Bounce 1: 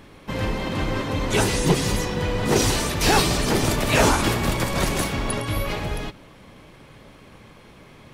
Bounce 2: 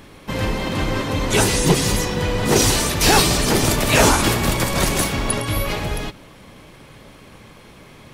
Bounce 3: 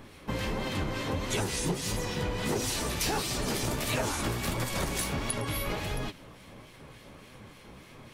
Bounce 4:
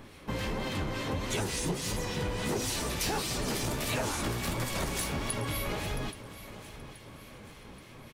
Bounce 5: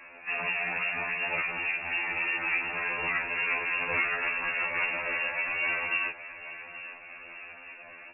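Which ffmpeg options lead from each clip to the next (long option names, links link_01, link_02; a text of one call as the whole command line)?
ffmpeg -i in.wav -af "highshelf=frequency=5000:gain=5.5,volume=3dB" out.wav
ffmpeg -i in.wav -filter_complex "[0:a]acrossover=split=1700[link_01][link_02];[link_01]aeval=exprs='val(0)*(1-0.5/2+0.5/2*cos(2*PI*3.5*n/s))':channel_layout=same[link_03];[link_02]aeval=exprs='val(0)*(1-0.5/2-0.5/2*cos(2*PI*3.5*n/s))':channel_layout=same[link_04];[link_03][link_04]amix=inputs=2:normalize=0,flanger=delay=7.7:depth=9.7:regen=49:speed=1.5:shape=sinusoidal,acompressor=threshold=-28dB:ratio=5" out.wav
ffmpeg -i in.wav -filter_complex "[0:a]asplit=2[link_01][link_02];[link_02]asoftclip=type=hard:threshold=-32dB,volume=-7.5dB[link_03];[link_01][link_03]amix=inputs=2:normalize=0,aecho=1:1:827|1654|2481|3308:0.178|0.0818|0.0376|0.0173,volume=-3.5dB" out.wav
ffmpeg -i in.wav -filter_complex "[0:a]acrossover=split=390[link_01][link_02];[link_01]aeval=exprs='max(val(0),0)':channel_layout=same[link_03];[link_03][link_02]amix=inputs=2:normalize=0,lowpass=frequency=2400:width_type=q:width=0.5098,lowpass=frequency=2400:width_type=q:width=0.6013,lowpass=frequency=2400:width_type=q:width=0.9,lowpass=frequency=2400:width_type=q:width=2.563,afreqshift=-2800,afftfilt=real='re*2*eq(mod(b,4),0)':imag='im*2*eq(mod(b,4),0)':win_size=2048:overlap=0.75,volume=8dB" out.wav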